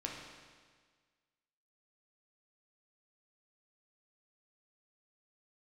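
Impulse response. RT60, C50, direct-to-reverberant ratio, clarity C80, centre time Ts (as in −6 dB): 1.6 s, 2.0 dB, −1.5 dB, 4.0 dB, 70 ms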